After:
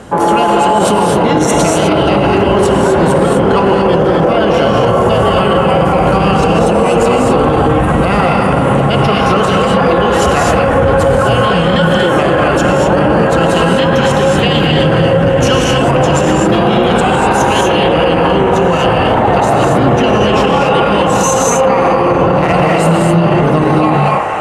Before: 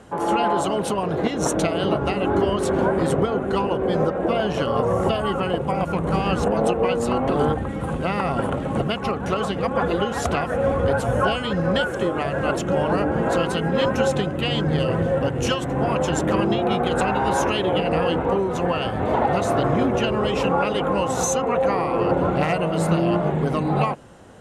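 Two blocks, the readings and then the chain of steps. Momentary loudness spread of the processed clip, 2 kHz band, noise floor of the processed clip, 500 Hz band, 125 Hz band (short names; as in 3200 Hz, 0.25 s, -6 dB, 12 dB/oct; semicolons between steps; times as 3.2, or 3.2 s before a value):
1 LU, +12.5 dB, -12 dBFS, +11.5 dB, +11.5 dB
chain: on a send: band-limited delay 0.311 s, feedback 82%, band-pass 1300 Hz, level -9.5 dB; on the sum: non-linear reverb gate 0.28 s rising, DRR -0.5 dB; maximiser +14.5 dB; gain -1 dB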